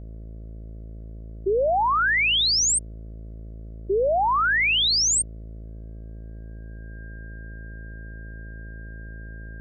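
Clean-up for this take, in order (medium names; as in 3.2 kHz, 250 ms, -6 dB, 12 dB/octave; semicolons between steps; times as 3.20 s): de-hum 54.8 Hz, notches 12; band-stop 1.6 kHz, Q 30; expander -30 dBFS, range -21 dB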